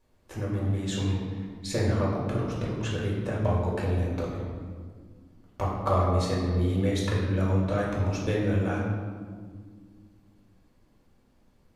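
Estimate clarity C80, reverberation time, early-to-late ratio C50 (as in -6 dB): 3.5 dB, 1.8 s, 1.5 dB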